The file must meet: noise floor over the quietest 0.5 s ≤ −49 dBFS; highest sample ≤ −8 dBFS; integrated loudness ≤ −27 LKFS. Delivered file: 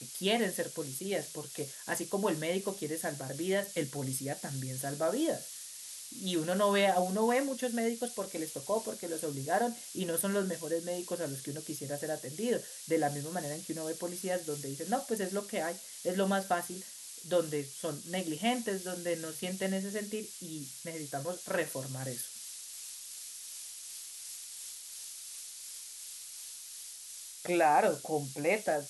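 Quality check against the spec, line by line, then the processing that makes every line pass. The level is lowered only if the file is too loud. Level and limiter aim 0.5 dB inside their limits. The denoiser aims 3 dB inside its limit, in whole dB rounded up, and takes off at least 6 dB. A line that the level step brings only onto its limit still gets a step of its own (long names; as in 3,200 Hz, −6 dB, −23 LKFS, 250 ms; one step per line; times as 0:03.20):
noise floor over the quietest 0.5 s −47 dBFS: out of spec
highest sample −16.0 dBFS: in spec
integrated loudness −34.5 LKFS: in spec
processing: broadband denoise 6 dB, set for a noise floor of −47 dBFS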